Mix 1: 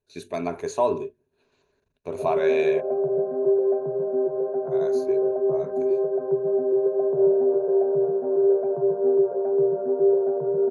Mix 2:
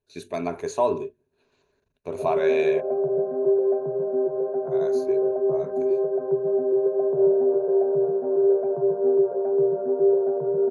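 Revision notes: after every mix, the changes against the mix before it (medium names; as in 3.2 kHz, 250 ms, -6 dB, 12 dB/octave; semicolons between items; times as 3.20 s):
no change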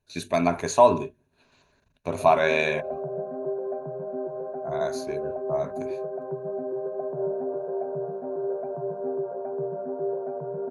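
speech +8.0 dB; master: add peaking EQ 410 Hz -11.5 dB 0.55 oct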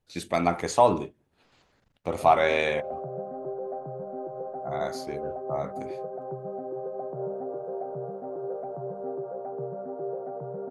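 background: add distance through air 350 m; master: remove rippled EQ curve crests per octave 1.5, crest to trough 10 dB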